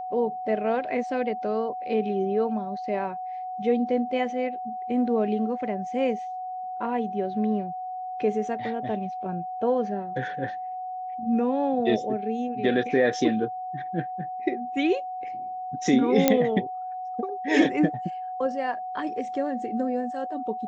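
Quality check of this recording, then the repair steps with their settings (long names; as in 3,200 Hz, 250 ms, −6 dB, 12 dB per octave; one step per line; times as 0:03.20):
whistle 740 Hz −31 dBFS
0:16.28: click −4 dBFS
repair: click removal
notch filter 740 Hz, Q 30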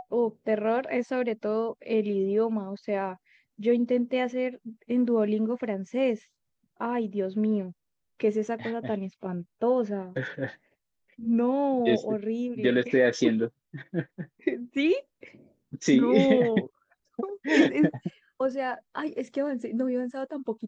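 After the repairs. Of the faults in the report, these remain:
none of them is left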